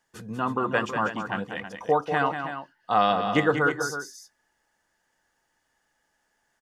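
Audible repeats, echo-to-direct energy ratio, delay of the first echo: 2, -6.0 dB, 0.191 s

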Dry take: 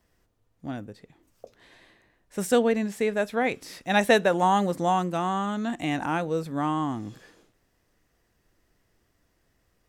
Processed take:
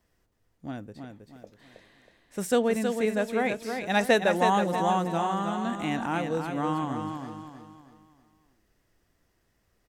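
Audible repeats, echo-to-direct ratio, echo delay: 4, -5.5 dB, 0.32 s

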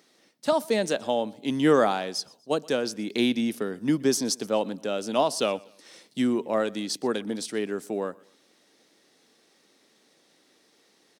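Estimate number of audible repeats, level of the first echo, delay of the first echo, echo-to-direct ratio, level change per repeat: 2, -24.0 dB, 0.122 s, -23.5 dB, -8.5 dB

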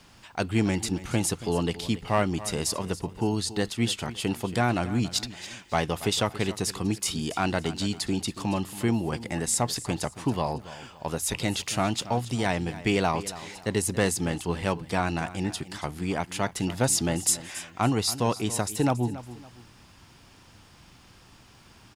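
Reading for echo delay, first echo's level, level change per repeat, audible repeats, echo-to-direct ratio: 0.279 s, -15.5 dB, -9.5 dB, 2, -15.0 dB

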